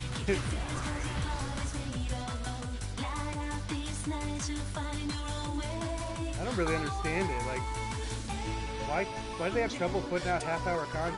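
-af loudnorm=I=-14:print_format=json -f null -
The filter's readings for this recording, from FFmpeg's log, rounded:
"input_i" : "-33.8",
"input_tp" : "-17.1",
"input_lra" : "3.0",
"input_thresh" : "-43.8",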